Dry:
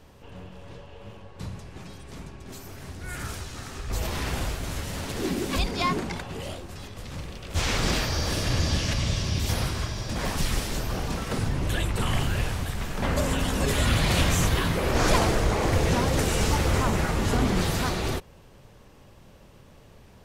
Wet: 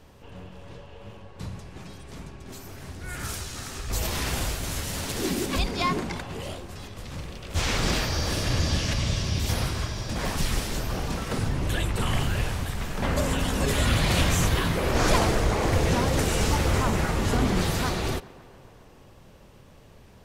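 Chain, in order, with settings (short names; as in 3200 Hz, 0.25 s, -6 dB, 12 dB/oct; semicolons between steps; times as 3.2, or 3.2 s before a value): 3.23–5.46 high shelf 3800 Hz +7.5 dB; tape echo 0.14 s, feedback 82%, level -21 dB, low-pass 3500 Hz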